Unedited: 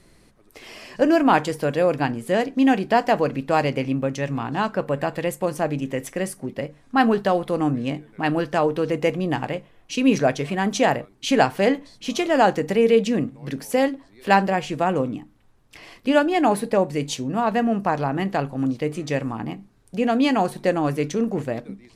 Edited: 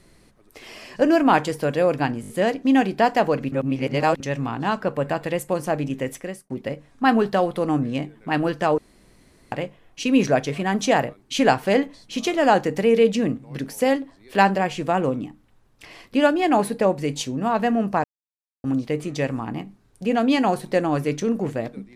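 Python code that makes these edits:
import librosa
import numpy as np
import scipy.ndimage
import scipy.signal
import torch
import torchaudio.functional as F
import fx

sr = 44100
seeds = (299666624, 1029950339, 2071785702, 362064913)

y = fx.edit(x, sr, fx.stutter(start_s=2.21, slice_s=0.02, count=5),
    fx.reverse_span(start_s=3.44, length_s=0.68),
    fx.fade_out_span(start_s=5.99, length_s=0.43),
    fx.room_tone_fill(start_s=8.7, length_s=0.74),
    fx.silence(start_s=17.96, length_s=0.6), tone=tone)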